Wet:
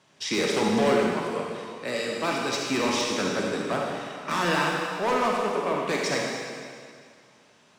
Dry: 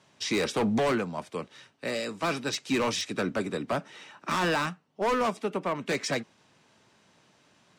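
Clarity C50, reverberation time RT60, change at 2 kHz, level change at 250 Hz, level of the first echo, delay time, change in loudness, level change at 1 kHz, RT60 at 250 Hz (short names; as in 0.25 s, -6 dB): -1.0 dB, 2.1 s, +4.0 dB, +2.5 dB, none, none, +3.5 dB, +4.0 dB, 2.0 s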